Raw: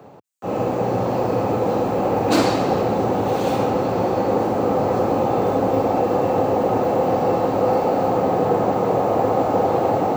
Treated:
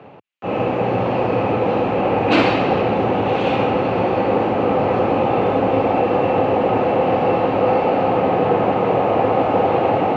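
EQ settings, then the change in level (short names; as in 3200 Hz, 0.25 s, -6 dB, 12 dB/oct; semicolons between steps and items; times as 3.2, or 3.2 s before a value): synth low-pass 2700 Hz, resonance Q 3; +1.5 dB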